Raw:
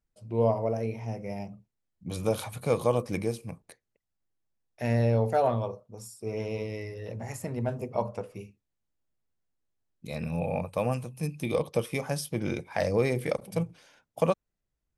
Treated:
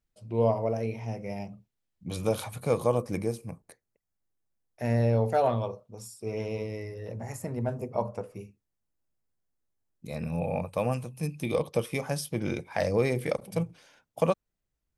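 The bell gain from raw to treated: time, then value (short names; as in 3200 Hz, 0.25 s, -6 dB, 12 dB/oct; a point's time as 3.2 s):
bell 3200 Hz 1.2 oct
2.08 s +3 dB
3.04 s -6.5 dB
4.82 s -6.5 dB
5.49 s +3.5 dB
6.21 s +3.5 dB
6.79 s -6 dB
10.09 s -6 dB
10.73 s 0 dB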